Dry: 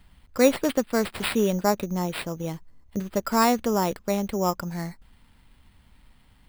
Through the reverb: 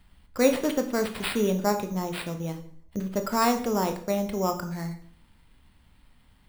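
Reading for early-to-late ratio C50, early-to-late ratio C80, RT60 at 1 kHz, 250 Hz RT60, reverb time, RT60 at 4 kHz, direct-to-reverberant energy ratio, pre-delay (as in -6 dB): 11.0 dB, 14.5 dB, 0.50 s, 0.70 s, 0.55 s, 0.50 s, 6.0 dB, 18 ms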